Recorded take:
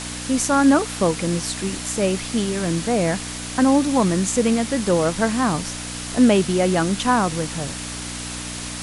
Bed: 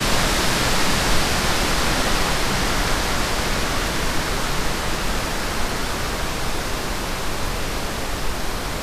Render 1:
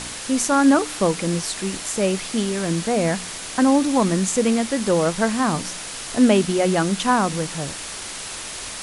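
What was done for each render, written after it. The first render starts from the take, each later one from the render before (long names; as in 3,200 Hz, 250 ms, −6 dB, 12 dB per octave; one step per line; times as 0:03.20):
hum removal 60 Hz, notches 5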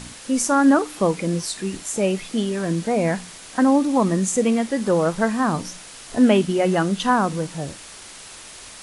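noise reduction from a noise print 8 dB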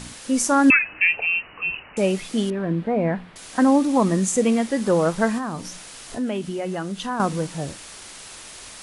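0:00.70–0:01.97: voice inversion scrambler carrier 2,900 Hz
0:02.50–0:03.36: high-frequency loss of the air 490 metres
0:05.38–0:07.20: downward compressor 2 to 1, threshold −31 dBFS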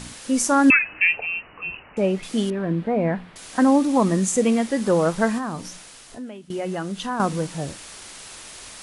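0:01.18–0:02.23: low-pass filter 1,700 Hz 6 dB per octave
0:05.51–0:06.50: fade out, to −18.5 dB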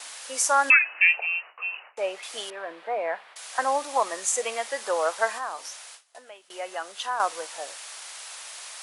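noise gate with hold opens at −32 dBFS
high-pass filter 610 Hz 24 dB per octave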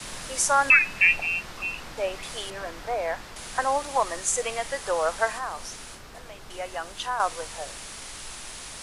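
mix in bed −21.5 dB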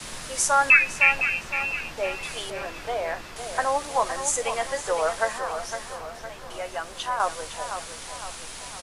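double-tracking delay 13 ms −10.5 dB
tape delay 510 ms, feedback 53%, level −8 dB, low-pass 3,700 Hz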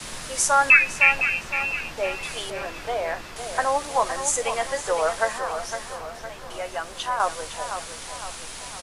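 level +1.5 dB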